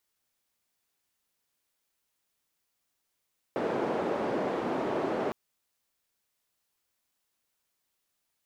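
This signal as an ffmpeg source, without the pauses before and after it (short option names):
-f lavfi -i "anoisesrc=c=white:d=1.76:r=44100:seed=1,highpass=f=290,lowpass=f=510,volume=-6.6dB"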